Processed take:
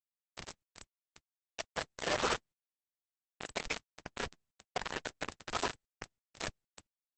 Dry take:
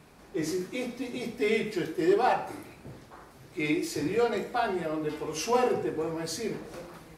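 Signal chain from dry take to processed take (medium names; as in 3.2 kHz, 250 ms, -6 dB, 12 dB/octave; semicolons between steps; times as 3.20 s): 3.84–5.50 s: median filter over 41 samples; recorder AGC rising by 15 dB/s; spectral gate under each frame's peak -15 dB weak; high-pass 500 Hz 12 dB/octave; tilt shelf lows +7.5 dB, about 1.1 kHz; band-stop 1.1 kHz, Q 28; tremolo saw down 0.63 Hz, depth 60%; bit crusher 6-bit; trim +7.5 dB; Opus 10 kbps 48 kHz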